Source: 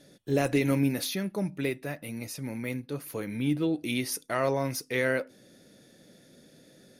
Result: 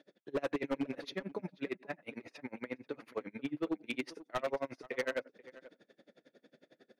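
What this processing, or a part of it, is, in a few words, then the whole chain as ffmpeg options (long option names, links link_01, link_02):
helicopter radio: -filter_complex "[0:a]asettb=1/sr,asplit=3[link_01][link_02][link_03];[link_01]atrim=end=1.984[link_04];[link_02]atrim=start=1.98:end=3.18,asetpts=PTS-STARTPTS,afade=type=in:duration=0.004:curve=qsin,afade=type=out:start_time=1.196:duration=0.004:curve=qsin,equalizer=frequency=1400:width_type=o:width=2.6:gain=3.5[link_05];[link_03]atrim=start=3.176[link_06];[link_04][link_05]acrossfade=duration=0.004:curve1=hsin:curve2=qsin[link_07];[link_07][link_06]acrossfade=duration=0.004:curve1=qsin:curve2=hsin,highpass=320,lowpass=2600,aeval=exprs='val(0)*pow(10,-34*(0.5-0.5*cos(2*PI*11*n/s))/20)':channel_layout=same,asoftclip=type=hard:threshold=-30.5dB,asplit=2[link_08][link_09];[link_09]adelay=484,volume=-18dB,highshelf=frequency=4000:gain=-10.9[link_10];[link_08][link_10]amix=inputs=2:normalize=0,volume=2.5dB"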